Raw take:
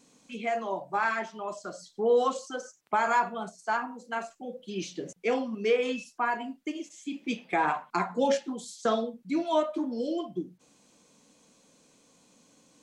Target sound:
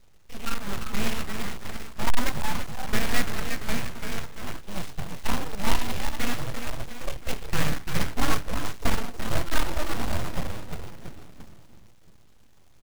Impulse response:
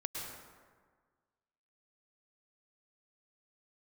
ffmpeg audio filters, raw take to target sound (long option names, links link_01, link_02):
-filter_complex "[0:a]asplit=7[link_01][link_02][link_03][link_04][link_05][link_06][link_07];[link_02]adelay=340,afreqshift=-48,volume=-6.5dB[link_08];[link_03]adelay=680,afreqshift=-96,volume=-12.3dB[link_09];[link_04]adelay=1020,afreqshift=-144,volume=-18.2dB[link_10];[link_05]adelay=1360,afreqshift=-192,volume=-24dB[link_11];[link_06]adelay=1700,afreqshift=-240,volume=-29.9dB[link_12];[link_07]adelay=2040,afreqshift=-288,volume=-35.7dB[link_13];[link_01][link_08][link_09][link_10][link_11][link_12][link_13]amix=inputs=7:normalize=0,aresample=16000,aeval=exprs='abs(val(0))':channel_layout=same,aresample=44100,bass=frequency=250:gain=14,treble=frequency=4000:gain=-9,acrusher=bits=3:mode=log:mix=0:aa=0.000001,volume=-3.5dB"